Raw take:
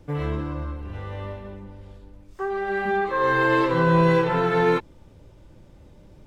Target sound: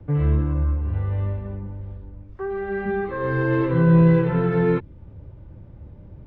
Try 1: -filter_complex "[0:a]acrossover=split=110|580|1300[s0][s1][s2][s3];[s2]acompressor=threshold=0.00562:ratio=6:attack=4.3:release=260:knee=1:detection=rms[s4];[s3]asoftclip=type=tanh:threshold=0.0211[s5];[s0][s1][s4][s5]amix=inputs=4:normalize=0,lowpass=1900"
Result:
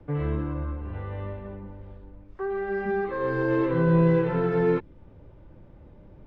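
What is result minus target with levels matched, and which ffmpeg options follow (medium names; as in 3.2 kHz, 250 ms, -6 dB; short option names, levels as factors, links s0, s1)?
saturation: distortion +8 dB; 125 Hz band -3.0 dB
-filter_complex "[0:a]acrossover=split=110|580|1300[s0][s1][s2][s3];[s2]acompressor=threshold=0.00562:ratio=6:attack=4.3:release=260:knee=1:detection=rms[s4];[s3]asoftclip=type=tanh:threshold=0.0531[s5];[s0][s1][s4][s5]amix=inputs=4:normalize=0,lowpass=1900,equalizer=f=88:w=0.64:g=11.5"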